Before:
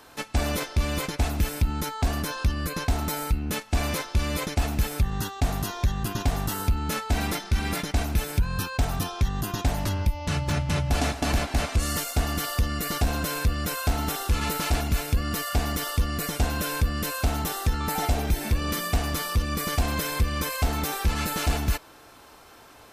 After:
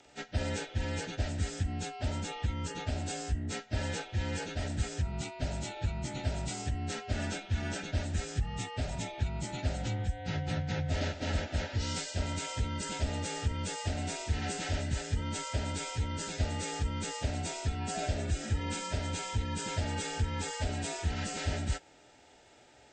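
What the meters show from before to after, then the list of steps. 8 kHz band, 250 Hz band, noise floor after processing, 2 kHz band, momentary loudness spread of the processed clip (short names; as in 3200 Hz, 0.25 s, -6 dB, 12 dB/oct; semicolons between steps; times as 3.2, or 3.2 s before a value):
-7.0 dB, -8.0 dB, -59 dBFS, -8.5 dB, 2 LU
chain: inharmonic rescaling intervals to 86%; Butterworth band-stop 1100 Hz, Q 3.3; gain -6 dB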